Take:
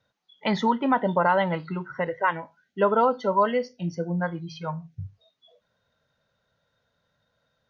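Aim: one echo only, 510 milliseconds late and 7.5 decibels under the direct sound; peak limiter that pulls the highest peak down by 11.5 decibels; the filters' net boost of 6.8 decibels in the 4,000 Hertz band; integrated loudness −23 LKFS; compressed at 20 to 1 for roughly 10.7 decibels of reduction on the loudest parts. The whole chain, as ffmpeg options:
ffmpeg -i in.wav -af "equalizer=frequency=4000:width_type=o:gain=9,acompressor=threshold=-26dB:ratio=20,alimiter=level_in=2dB:limit=-24dB:level=0:latency=1,volume=-2dB,aecho=1:1:510:0.422,volume=12.5dB" out.wav

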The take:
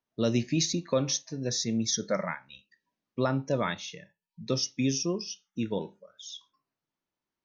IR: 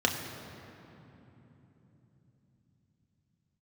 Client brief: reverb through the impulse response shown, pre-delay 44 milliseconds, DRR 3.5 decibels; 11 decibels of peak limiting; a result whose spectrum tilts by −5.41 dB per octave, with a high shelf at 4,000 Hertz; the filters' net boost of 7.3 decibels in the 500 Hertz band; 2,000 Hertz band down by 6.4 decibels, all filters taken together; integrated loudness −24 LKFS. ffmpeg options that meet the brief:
-filter_complex "[0:a]equalizer=frequency=500:width_type=o:gain=9,equalizer=frequency=2000:width_type=o:gain=-8,highshelf=frequency=4000:gain=-6,alimiter=limit=-20.5dB:level=0:latency=1,asplit=2[link_01][link_02];[1:a]atrim=start_sample=2205,adelay=44[link_03];[link_02][link_03]afir=irnorm=-1:irlink=0,volume=-14.5dB[link_04];[link_01][link_04]amix=inputs=2:normalize=0,volume=6dB"

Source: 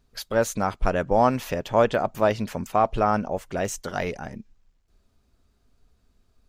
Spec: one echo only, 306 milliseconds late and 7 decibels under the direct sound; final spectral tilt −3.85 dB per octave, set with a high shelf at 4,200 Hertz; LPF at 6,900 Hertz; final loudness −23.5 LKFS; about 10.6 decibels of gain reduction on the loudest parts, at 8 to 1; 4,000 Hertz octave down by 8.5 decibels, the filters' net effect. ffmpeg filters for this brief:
ffmpeg -i in.wav -af "lowpass=6900,equalizer=frequency=4000:width_type=o:gain=-7.5,highshelf=frequency=4200:gain=-6,acompressor=threshold=-25dB:ratio=8,aecho=1:1:306:0.447,volume=8dB" out.wav

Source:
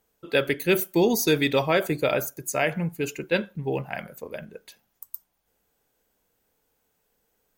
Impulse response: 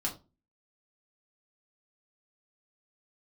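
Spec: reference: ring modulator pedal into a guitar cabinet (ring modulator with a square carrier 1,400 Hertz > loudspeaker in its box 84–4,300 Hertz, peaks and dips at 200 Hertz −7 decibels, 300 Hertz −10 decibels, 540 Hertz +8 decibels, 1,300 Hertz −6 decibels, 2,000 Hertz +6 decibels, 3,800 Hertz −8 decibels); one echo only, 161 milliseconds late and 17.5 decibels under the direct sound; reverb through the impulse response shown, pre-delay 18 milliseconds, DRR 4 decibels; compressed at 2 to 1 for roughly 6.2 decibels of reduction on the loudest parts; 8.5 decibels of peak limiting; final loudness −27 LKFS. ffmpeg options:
-filter_complex "[0:a]acompressor=threshold=-28dB:ratio=2,alimiter=limit=-23dB:level=0:latency=1,aecho=1:1:161:0.133,asplit=2[link_01][link_02];[1:a]atrim=start_sample=2205,adelay=18[link_03];[link_02][link_03]afir=irnorm=-1:irlink=0,volume=-7.5dB[link_04];[link_01][link_04]amix=inputs=2:normalize=0,aeval=exprs='val(0)*sgn(sin(2*PI*1400*n/s))':channel_layout=same,highpass=84,equalizer=frequency=200:width_type=q:width=4:gain=-7,equalizer=frequency=300:width_type=q:width=4:gain=-10,equalizer=frequency=540:width_type=q:width=4:gain=8,equalizer=frequency=1300:width_type=q:width=4:gain=-6,equalizer=frequency=2000:width_type=q:width=4:gain=6,equalizer=frequency=3800:width_type=q:width=4:gain=-8,lowpass=frequency=4300:width=0.5412,lowpass=frequency=4300:width=1.3066,volume=4dB"

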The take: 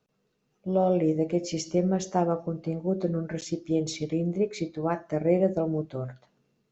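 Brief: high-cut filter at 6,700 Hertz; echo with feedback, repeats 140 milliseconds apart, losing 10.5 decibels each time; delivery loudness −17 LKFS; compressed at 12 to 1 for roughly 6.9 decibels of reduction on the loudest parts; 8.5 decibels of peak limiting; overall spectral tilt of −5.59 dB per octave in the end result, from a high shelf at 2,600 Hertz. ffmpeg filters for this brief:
ffmpeg -i in.wav -af "lowpass=6700,highshelf=frequency=2600:gain=3.5,acompressor=threshold=-25dB:ratio=12,alimiter=limit=-24dB:level=0:latency=1,aecho=1:1:140|280|420:0.299|0.0896|0.0269,volume=17dB" out.wav

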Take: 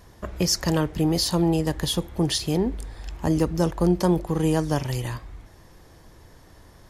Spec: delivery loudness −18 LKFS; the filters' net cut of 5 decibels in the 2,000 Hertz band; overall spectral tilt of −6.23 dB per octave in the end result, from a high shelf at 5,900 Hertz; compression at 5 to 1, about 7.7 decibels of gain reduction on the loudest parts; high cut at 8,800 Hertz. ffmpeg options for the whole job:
ffmpeg -i in.wav -af "lowpass=8800,equalizer=frequency=2000:width_type=o:gain=-5.5,highshelf=frequency=5900:gain=-8.5,acompressor=threshold=-25dB:ratio=5,volume=13dB" out.wav

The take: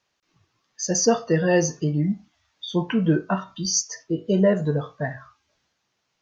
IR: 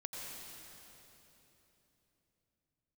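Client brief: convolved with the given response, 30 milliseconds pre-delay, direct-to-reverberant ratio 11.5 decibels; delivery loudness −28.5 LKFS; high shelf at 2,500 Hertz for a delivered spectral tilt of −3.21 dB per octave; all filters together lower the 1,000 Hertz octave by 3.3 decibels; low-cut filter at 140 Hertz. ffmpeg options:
-filter_complex "[0:a]highpass=140,equalizer=frequency=1000:width_type=o:gain=-6.5,highshelf=frequency=2500:gain=8,asplit=2[link_01][link_02];[1:a]atrim=start_sample=2205,adelay=30[link_03];[link_02][link_03]afir=irnorm=-1:irlink=0,volume=-11dB[link_04];[link_01][link_04]amix=inputs=2:normalize=0,volume=-7dB"

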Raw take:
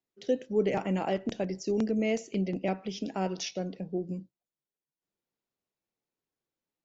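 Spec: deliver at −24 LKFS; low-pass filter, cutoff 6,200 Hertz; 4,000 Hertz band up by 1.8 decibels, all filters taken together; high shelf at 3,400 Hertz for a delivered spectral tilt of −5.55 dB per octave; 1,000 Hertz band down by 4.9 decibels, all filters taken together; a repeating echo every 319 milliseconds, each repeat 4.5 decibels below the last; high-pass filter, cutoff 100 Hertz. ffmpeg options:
ffmpeg -i in.wav -af "highpass=100,lowpass=6200,equalizer=frequency=1000:width_type=o:gain=-7.5,highshelf=frequency=3400:gain=-4.5,equalizer=frequency=4000:width_type=o:gain=7.5,aecho=1:1:319|638|957|1276|1595|1914|2233|2552|2871:0.596|0.357|0.214|0.129|0.0772|0.0463|0.0278|0.0167|0.01,volume=7dB" out.wav

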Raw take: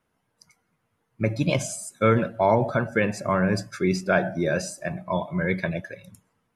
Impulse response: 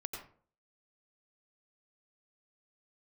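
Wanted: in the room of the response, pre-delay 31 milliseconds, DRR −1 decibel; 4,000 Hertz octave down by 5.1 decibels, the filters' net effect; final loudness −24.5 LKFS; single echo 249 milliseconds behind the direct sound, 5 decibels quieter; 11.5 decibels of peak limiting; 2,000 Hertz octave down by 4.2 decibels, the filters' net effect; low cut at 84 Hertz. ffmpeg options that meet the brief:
-filter_complex "[0:a]highpass=84,equalizer=frequency=2000:width_type=o:gain=-4.5,equalizer=frequency=4000:width_type=o:gain=-5.5,alimiter=limit=-20dB:level=0:latency=1,aecho=1:1:249:0.562,asplit=2[link_01][link_02];[1:a]atrim=start_sample=2205,adelay=31[link_03];[link_02][link_03]afir=irnorm=-1:irlink=0,volume=1.5dB[link_04];[link_01][link_04]amix=inputs=2:normalize=0,volume=2dB"

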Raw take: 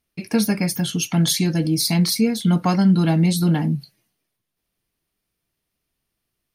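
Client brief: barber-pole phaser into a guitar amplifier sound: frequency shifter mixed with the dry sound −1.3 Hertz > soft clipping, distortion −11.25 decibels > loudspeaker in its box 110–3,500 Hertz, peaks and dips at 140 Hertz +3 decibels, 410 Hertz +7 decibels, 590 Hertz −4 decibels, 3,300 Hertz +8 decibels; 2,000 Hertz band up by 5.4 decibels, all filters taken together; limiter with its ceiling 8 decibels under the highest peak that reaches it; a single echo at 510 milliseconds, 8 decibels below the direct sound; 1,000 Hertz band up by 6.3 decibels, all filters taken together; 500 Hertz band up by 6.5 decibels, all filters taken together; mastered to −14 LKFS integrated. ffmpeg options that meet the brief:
ffmpeg -i in.wav -filter_complex "[0:a]equalizer=frequency=500:width_type=o:gain=4,equalizer=frequency=1000:width_type=o:gain=6.5,equalizer=frequency=2000:width_type=o:gain=4,alimiter=limit=-11dB:level=0:latency=1,aecho=1:1:510:0.398,asplit=2[link_01][link_02];[link_02]afreqshift=-1.3[link_03];[link_01][link_03]amix=inputs=2:normalize=1,asoftclip=threshold=-20.5dB,highpass=110,equalizer=frequency=140:width_type=q:width=4:gain=3,equalizer=frequency=410:width_type=q:width=4:gain=7,equalizer=frequency=590:width_type=q:width=4:gain=-4,equalizer=frequency=3300:width_type=q:width=4:gain=8,lowpass=frequency=3500:width=0.5412,lowpass=frequency=3500:width=1.3066,volume=12dB" out.wav

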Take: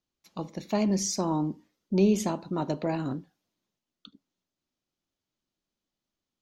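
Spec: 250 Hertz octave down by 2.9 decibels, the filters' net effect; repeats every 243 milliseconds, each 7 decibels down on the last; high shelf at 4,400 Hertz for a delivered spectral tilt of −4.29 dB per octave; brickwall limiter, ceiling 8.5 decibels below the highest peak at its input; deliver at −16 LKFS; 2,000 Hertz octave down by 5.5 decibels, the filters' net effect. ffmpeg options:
ffmpeg -i in.wav -af "equalizer=frequency=250:width_type=o:gain=-4,equalizer=frequency=2000:width_type=o:gain=-8.5,highshelf=frequency=4400:gain=4.5,alimiter=limit=-22dB:level=0:latency=1,aecho=1:1:243|486|729|972|1215:0.447|0.201|0.0905|0.0407|0.0183,volume=16.5dB" out.wav

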